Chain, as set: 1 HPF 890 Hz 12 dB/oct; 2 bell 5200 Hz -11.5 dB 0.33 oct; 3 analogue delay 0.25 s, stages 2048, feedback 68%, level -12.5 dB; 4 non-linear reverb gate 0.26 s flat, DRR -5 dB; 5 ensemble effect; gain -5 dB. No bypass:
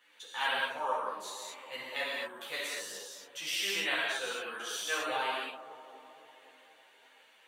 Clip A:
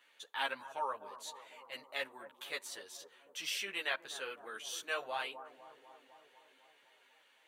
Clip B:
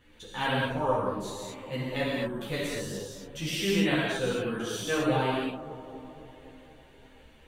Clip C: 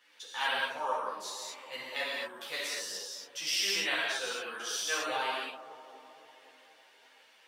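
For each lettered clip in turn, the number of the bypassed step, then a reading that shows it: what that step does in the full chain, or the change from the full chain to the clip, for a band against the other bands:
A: 4, momentary loudness spread change +3 LU; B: 1, 250 Hz band +20.0 dB; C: 2, 8 kHz band +3.5 dB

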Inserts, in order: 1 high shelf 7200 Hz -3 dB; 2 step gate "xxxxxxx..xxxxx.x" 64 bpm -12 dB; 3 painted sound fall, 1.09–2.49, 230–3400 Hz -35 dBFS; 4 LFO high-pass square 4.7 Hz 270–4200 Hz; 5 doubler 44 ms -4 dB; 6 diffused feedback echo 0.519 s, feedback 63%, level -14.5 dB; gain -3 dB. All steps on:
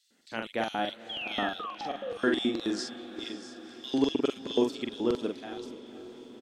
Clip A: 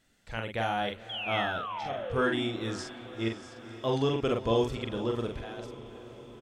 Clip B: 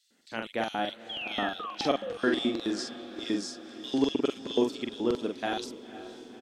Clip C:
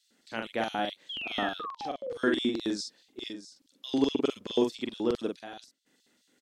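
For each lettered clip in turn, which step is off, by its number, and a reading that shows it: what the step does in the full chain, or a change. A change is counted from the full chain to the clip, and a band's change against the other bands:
4, 125 Hz band +13.0 dB; 2, 8 kHz band +2.5 dB; 6, echo-to-direct -12.5 dB to none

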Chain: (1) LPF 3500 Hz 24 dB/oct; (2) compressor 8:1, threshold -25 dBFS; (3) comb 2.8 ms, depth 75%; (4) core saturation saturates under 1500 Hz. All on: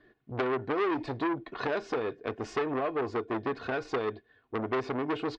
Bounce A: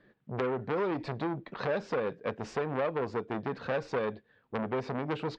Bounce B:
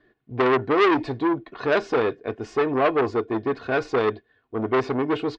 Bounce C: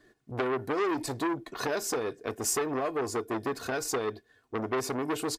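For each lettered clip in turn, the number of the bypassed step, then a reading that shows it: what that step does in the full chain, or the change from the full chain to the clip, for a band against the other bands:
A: 3, 125 Hz band +5.5 dB; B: 2, mean gain reduction 6.5 dB; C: 1, 4 kHz band +5.5 dB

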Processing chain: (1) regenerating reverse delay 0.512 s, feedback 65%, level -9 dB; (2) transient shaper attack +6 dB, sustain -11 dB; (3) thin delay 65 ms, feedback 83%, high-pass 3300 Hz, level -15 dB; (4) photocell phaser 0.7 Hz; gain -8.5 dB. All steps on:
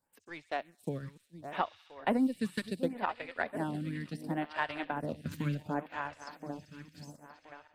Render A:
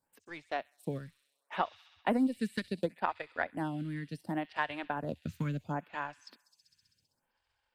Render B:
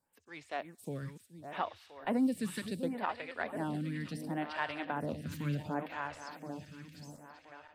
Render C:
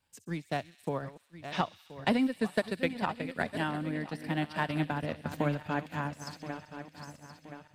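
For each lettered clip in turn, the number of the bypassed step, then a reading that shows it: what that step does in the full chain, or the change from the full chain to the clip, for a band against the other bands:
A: 1, momentary loudness spread change -6 LU; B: 2, crest factor change -3.0 dB; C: 4, 4 kHz band +2.5 dB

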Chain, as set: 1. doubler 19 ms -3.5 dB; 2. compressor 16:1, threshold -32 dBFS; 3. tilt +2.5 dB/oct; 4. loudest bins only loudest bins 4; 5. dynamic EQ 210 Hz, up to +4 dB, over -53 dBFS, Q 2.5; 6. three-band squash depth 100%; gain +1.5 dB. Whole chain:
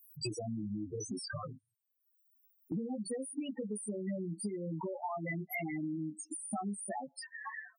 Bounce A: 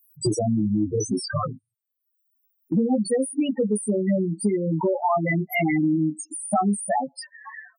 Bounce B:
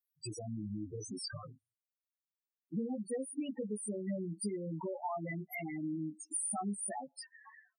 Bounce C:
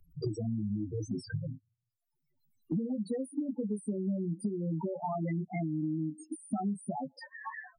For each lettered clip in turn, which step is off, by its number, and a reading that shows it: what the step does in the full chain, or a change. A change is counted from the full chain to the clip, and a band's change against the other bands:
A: 2, mean gain reduction 13.5 dB; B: 6, momentary loudness spread change +4 LU; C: 3, 8 kHz band -11.5 dB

